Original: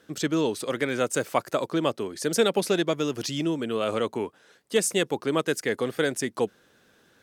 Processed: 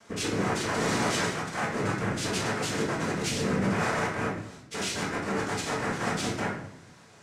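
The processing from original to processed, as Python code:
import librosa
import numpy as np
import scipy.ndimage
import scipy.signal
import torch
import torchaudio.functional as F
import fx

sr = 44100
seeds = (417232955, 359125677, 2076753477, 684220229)

y = fx.clip_1bit(x, sr, at=(0.74, 1.25))
y = fx.low_shelf(y, sr, hz=230.0, db=-6.5)
y = fx.over_compress(y, sr, threshold_db=-26.0, ratio=-0.5)
y = np.clip(10.0 ** (32.0 / 20.0) * y, -1.0, 1.0) / 10.0 ** (32.0 / 20.0)
y = fx.noise_vocoder(y, sr, seeds[0], bands=3)
y = fx.room_shoebox(y, sr, seeds[1], volume_m3=160.0, walls='mixed', distance_m=1.6)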